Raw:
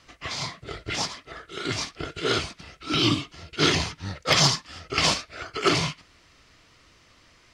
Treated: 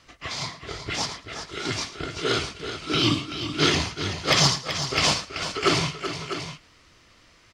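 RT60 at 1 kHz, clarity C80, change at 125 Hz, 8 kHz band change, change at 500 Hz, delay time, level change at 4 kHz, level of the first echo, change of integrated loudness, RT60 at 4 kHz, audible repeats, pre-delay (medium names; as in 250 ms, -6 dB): no reverb, no reverb, +1.0 dB, +1.0 dB, +1.0 dB, 110 ms, +1.0 dB, -16.0 dB, 0.0 dB, no reverb, 3, no reverb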